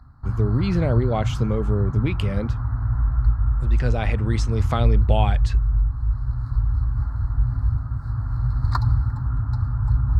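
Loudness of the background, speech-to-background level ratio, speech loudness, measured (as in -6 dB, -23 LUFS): -24.0 LUFS, -1.5 dB, -25.5 LUFS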